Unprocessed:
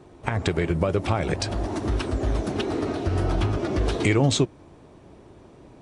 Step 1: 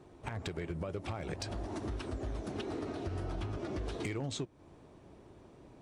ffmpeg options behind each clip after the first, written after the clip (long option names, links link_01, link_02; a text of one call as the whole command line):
ffmpeg -i in.wav -af "acompressor=threshold=-29dB:ratio=3,asoftclip=type=hard:threshold=-21dB,volume=-7.5dB" out.wav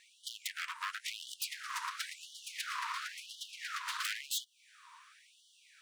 ffmpeg -i in.wav -af "aeval=exprs='0.0106*(abs(mod(val(0)/0.0106+3,4)-2)-1)':channel_layout=same,highpass=frequency=420:width_type=q:width=3.5,afftfilt=real='re*gte(b*sr/1024,900*pow(2900/900,0.5+0.5*sin(2*PI*0.96*pts/sr)))':imag='im*gte(b*sr/1024,900*pow(2900/900,0.5+0.5*sin(2*PI*0.96*pts/sr)))':win_size=1024:overlap=0.75,volume=11.5dB" out.wav